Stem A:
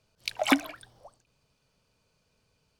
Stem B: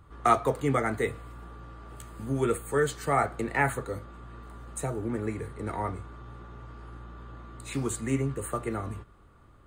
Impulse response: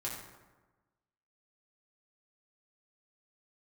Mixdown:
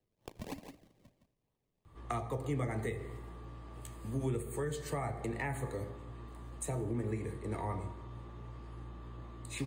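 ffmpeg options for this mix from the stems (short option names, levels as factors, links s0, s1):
-filter_complex "[0:a]lowpass=f=4500:w=0.5412,lowpass=f=4500:w=1.3066,acompressor=threshold=0.0355:ratio=6,acrusher=samples=36:mix=1:aa=0.000001:lfo=1:lforange=36:lforate=3.1,volume=0.266,asplit=3[s0][s1][s2];[s1]volume=0.0794[s3];[s2]volume=0.398[s4];[1:a]bandreject=f=45.03:t=h:w=4,bandreject=f=90.06:t=h:w=4,bandreject=f=135.09:t=h:w=4,bandreject=f=180.12:t=h:w=4,bandreject=f=225.15:t=h:w=4,bandreject=f=270.18:t=h:w=4,bandreject=f=315.21:t=h:w=4,bandreject=f=360.24:t=h:w=4,bandreject=f=405.27:t=h:w=4,bandreject=f=450.3:t=h:w=4,bandreject=f=495.33:t=h:w=4,bandreject=f=540.36:t=h:w=4,bandreject=f=585.39:t=h:w=4,bandreject=f=630.42:t=h:w=4,bandreject=f=675.45:t=h:w=4,bandreject=f=720.48:t=h:w=4,bandreject=f=765.51:t=h:w=4,bandreject=f=810.54:t=h:w=4,bandreject=f=855.57:t=h:w=4,bandreject=f=900.6:t=h:w=4,bandreject=f=945.63:t=h:w=4,adelay=1850,volume=0.631,asplit=2[s5][s6];[s6]volume=0.299[s7];[2:a]atrim=start_sample=2205[s8];[s3][s7]amix=inputs=2:normalize=0[s9];[s9][s8]afir=irnorm=-1:irlink=0[s10];[s4]aecho=0:1:165:1[s11];[s0][s5][s10][s11]amix=inputs=4:normalize=0,equalizer=f=1400:w=5.6:g=-14,acrossover=split=180[s12][s13];[s13]acompressor=threshold=0.0178:ratio=10[s14];[s12][s14]amix=inputs=2:normalize=0"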